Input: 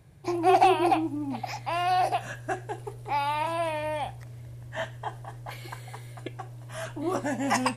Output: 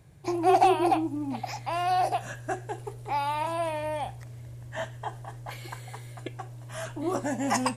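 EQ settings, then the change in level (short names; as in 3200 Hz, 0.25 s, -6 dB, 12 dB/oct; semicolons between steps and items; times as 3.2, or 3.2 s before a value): dynamic EQ 2400 Hz, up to -4 dB, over -39 dBFS, Q 0.79; bell 7200 Hz +3.5 dB 0.51 oct; 0.0 dB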